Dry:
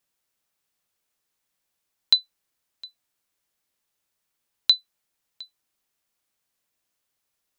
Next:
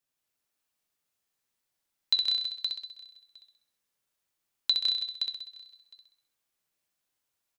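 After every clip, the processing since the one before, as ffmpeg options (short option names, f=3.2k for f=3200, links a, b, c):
-filter_complex "[0:a]asplit=2[a][b];[b]aecho=0:1:158|190|328|520:0.562|0.398|0.2|0.473[c];[a][c]amix=inputs=2:normalize=0,flanger=delay=7.4:depth=7.9:regen=68:speed=0.65:shape=sinusoidal,asplit=2[d][e];[e]aecho=0:1:65|130|195|260|325|390:0.562|0.259|0.119|0.0547|0.0252|0.0116[f];[d][f]amix=inputs=2:normalize=0,volume=-3dB"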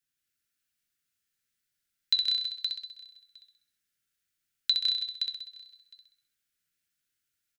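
-af "firequalizer=gain_entry='entry(110,0);entry(980,-23);entry(1400,1);entry(2400,-1)':delay=0.05:min_phase=1,volume=1dB"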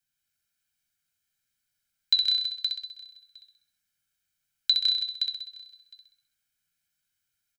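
-af "aecho=1:1:1.3:0.68"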